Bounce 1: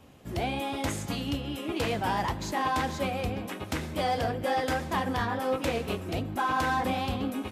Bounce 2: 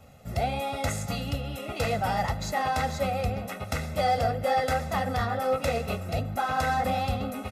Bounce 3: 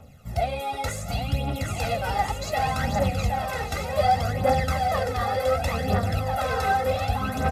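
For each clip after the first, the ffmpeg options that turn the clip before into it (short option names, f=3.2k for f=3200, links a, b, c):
-af "equalizer=f=3.1k:w=6.2:g=-7.5,aecho=1:1:1.5:0.82"
-af "aecho=1:1:770|1348|1781|2105|2349:0.631|0.398|0.251|0.158|0.1,aphaser=in_gain=1:out_gain=1:delay=2.6:decay=0.58:speed=0.67:type=triangular,volume=-1.5dB"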